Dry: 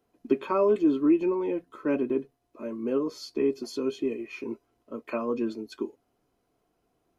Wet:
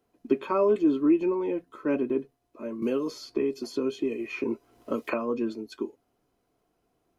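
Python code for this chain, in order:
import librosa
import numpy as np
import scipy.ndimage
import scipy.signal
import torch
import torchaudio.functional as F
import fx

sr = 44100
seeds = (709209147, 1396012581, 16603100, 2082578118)

y = fx.band_squash(x, sr, depth_pct=100, at=(2.82, 5.14))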